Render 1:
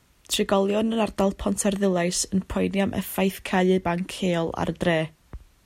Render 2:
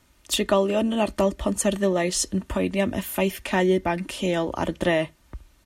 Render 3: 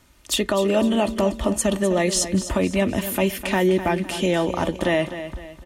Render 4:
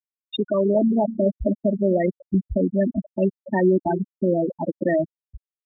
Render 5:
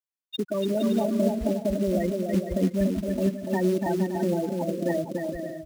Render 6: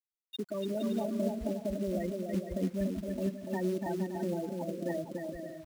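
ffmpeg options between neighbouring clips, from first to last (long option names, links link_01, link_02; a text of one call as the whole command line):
ffmpeg -i in.wav -af "aecho=1:1:3.3:0.4" out.wav
ffmpeg -i in.wav -af "alimiter=limit=-15dB:level=0:latency=1:release=86,aecho=1:1:254|508|762|1016:0.266|0.106|0.0426|0.017,volume=4dB" out.wav
ffmpeg -i in.wav -af "aresample=8000,acrusher=bits=3:mode=log:mix=0:aa=0.000001,aresample=44100,highpass=40,afftfilt=real='re*gte(hypot(re,im),0.355)':imag='im*gte(hypot(re,im),0.355)':win_size=1024:overlap=0.75,volume=1dB" out.wav
ffmpeg -i in.wav -filter_complex "[0:a]acrossover=split=290[link_01][link_02];[link_02]acompressor=threshold=-24dB:ratio=2[link_03];[link_01][link_03]amix=inputs=2:normalize=0,acrusher=bits=5:mode=log:mix=0:aa=0.000001,asplit=2[link_04][link_05];[link_05]aecho=0:1:290|464|568.4|631|668.6:0.631|0.398|0.251|0.158|0.1[link_06];[link_04][link_06]amix=inputs=2:normalize=0,volume=-4.5dB" out.wav
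ffmpeg -i in.wav -af "aeval=exprs='val(0)*gte(abs(val(0)),0.00447)':channel_layout=same,volume=-8.5dB" out.wav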